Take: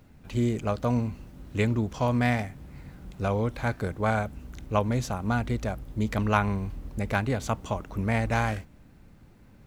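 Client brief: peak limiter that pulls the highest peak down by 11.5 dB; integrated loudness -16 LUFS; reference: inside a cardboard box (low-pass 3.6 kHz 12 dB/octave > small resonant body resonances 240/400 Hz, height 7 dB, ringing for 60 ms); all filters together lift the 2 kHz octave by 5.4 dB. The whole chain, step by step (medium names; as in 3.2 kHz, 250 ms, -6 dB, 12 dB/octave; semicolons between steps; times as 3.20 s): peaking EQ 2 kHz +7.5 dB; peak limiter -15.5 dBFS; low-pass 3.6 kHz 12 dB/octave; small resonant body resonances 240/400 Hz, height 7 dB, ringing for 60 ms; trim +11 dB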